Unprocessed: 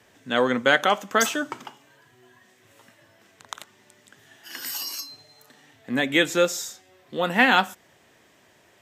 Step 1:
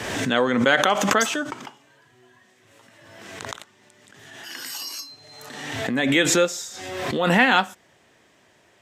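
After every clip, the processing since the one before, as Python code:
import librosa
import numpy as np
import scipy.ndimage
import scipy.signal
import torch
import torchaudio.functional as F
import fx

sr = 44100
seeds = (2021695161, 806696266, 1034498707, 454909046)

y = fx.peak_eq(x, sr, hz=14000.0, db=-9.5, octaves=0.49)
y = fx.pre_swell(y, sr, db_per_s=36.0)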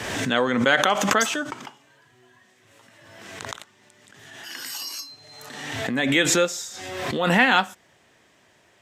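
y = fx.peak_eq(x, sr, hz=370.0, db=-2.0, octaves=2.0)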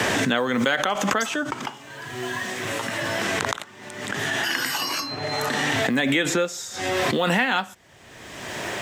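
y = fx.quant_companded(x, sr, bits=8)
y = fx.band_squash(y, sr, depth_pct=100)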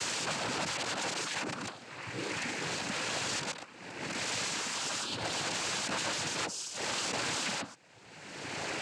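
y = (np.mod(10.0 ** (22.0 / 20.0) * x + 1.0, 2.0) - 1.0) / 10.0 ** (22.0 / 20.0)
y = fx.noise_vocoder(y, sr, seeds[0], bands=8)
y = y * librosa.db_to_amplitude(-5.5)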